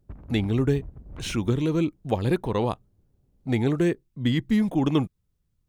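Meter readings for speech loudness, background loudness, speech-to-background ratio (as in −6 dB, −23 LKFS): −25.5 LKFS, −44.0 LKFS, 18.5 dB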